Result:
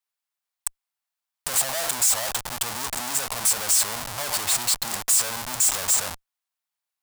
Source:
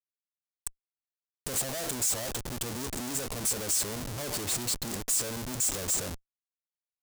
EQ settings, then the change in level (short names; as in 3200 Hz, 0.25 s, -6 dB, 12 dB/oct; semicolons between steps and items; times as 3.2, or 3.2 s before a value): resonant low shelf 570 Hz -11.5 dB, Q 1.5; bell 6300 Hz -2 dB 0.29 oct; +8.5 dB